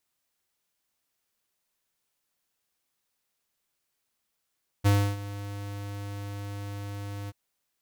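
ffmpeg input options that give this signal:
-f lavfi -i "aevalsrc='0.106*(2*lt(mod(101*t,1),0.5)-1)':d=2.482:s=44100,afade=t=in:d=0.024,afade=t=out:st=0.024:d=0.299:silence=0.141,afade=t=out:st=2.45:d=0.032"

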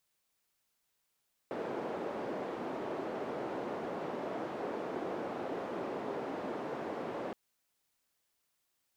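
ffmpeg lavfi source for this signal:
-f lavfi -i "anoisesrc=c=white:d=5.82:r=44100:seed=1,highpass=f=320,lowpass=f=490,volume=-13.9dB"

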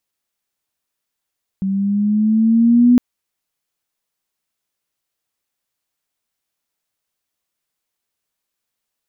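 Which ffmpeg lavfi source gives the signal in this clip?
-f lavfi -i "aevalsrc='pow(10,(-6.5+10*(t/1.36-1))/20)*sin(2*PI*191*1.36/(4.5*log(2)/12)*(exp(4.5*log(2)/12*t/1.36)-1))':d=1.36:s=44100"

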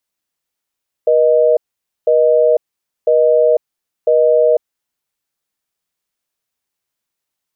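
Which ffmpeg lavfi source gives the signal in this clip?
-f lavfi -i "aevalsrc='0.282*(sin(2*PI*480*t)+sin(2*PI*620*t))*clip(min(mod(t,1),0.5-mod(t,1))/0.005,0,1)':d=3.7:s=44100"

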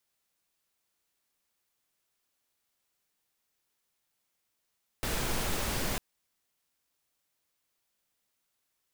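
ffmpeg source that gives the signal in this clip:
-f lavfi -i "anoisesrc=c=pink:a=0.136:d=0.95:r=44100:seed=1"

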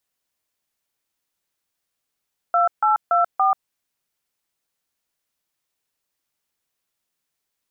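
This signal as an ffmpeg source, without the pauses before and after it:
-f lavfi -i "aevalsrc='0.141*clip(min(mod(t,0.285),0.136-mod(t,0.285))/0.002,0,1)*(eq(floor(t/0.285),0)*(sin(2*PI*697*mod(t,0.285))+sin(2*PI*1336*mod(t,0.285)))+eq(floor(t/0.285),1)*(sin(2*PI*852*mod(t,0.285))+sin(2*PI*1336*mod(t,0.285)))+eq(floor(t/0.285),2)*(sin(2*PI*697*mod(t,0.285))+sin(2*PI*1336*mod(t,0.285)))+eq(floor(t/0.285),3)*(sin(2*PI*770*mod(t,0.285))+sin(2*PI*1209*mod(t,0.285))))':d=1.14:s=44100"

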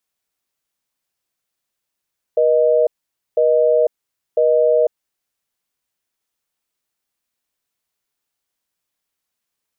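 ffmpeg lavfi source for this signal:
-f lavfi -i "aevalsrc='0.2*(sin(2*PI*480*t)+sin(2*PI*620*t))*clip(min(mod(t,1),0.5-mod(t,1))/0.005,0,1)':d=2.94:s=44100"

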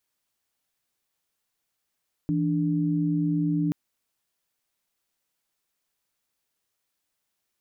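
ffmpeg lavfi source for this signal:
-f lavfi -i "aevalsrc='0.0596*(sin(2*PI*164.81*t)+sin(2*PI*293.66*t))':d=1.43:s=44100"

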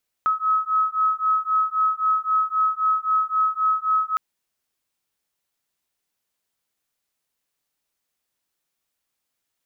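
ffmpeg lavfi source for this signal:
-f lavfi -i "aevalsrc='0.0841*(sin(2*PI*1280*t)+sin(2*PI*1283.8*t))':d=3.91:s=44100"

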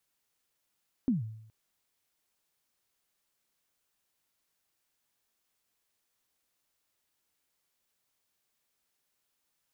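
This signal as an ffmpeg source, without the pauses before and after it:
-f lavfi -i "aevalsrc='0.0841*pow(10,-3*t/0.75)*sin(2*PI*(280*0.148/log(110/280)*(exp(log(110/280)*min(t,0.148)/0.148)-1)+110*max(t-0.148,0)))':d=0.42:s=44100"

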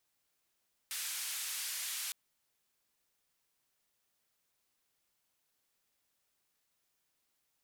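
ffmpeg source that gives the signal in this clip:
-f lavfi -i "anoisesrc=c=white:d=1.21:r=44100:seed=1,highpass=f=1700,lowpass=f=13000,volume=-31.7dB"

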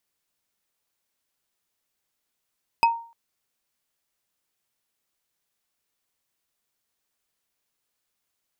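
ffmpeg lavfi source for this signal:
-f lavfi -i "aevalsrc='0.251*pow(10,-3*t/0.42)*sin(2*PI*926*t)+0.126*pow(10,-3*t/0.124)*sin(2*PI*2553*t)+0.0631*pow(10,-3*t/0.055)*sin(2*PI*5004.1*t)+0.0316*pow(10,-3*t/0.03)*sin(2*PI*8272*t)+0.0158*pow(10,-3*t/0.019)*sin(2*PI*12352.8*t)':d=0.3:s=44100"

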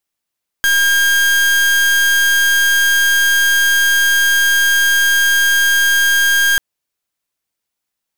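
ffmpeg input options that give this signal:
-f lavfi -i "aevalsrc='0.237*(2*lt(mod(1610*t,1),0.37)-1)':d=5.94:s=44100"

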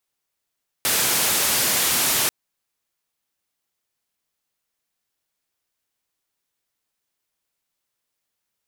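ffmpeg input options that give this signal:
-f lavfi -i "anoisesrc=c=white:d=1.44:r=44100:seed=1,highpass=f=89,lowpass=f=15000,volume=-13.9dB"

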